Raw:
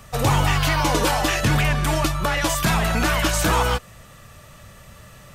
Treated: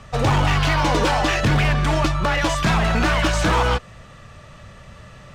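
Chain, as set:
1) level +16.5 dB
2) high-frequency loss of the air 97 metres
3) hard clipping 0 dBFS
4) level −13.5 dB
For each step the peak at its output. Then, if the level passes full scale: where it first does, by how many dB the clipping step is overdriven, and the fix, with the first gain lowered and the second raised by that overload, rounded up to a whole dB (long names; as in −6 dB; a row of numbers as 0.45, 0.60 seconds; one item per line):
+8.0, +7.5, 0.0, −13.5 dBFS
step 1, 7.5 dB
step 1 +8.5 dB, step 4 −5.5 dB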